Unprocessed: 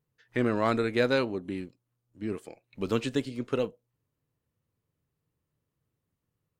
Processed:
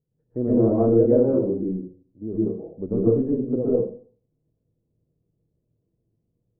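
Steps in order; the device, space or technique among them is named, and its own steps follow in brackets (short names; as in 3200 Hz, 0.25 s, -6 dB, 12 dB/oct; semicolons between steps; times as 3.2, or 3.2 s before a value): next room (LPF 580 Hz 24 dB/oct; reverb RT60 0.45 s, pre-delay 0.113 s, DRR -8.5 dB); gain +1.5 dB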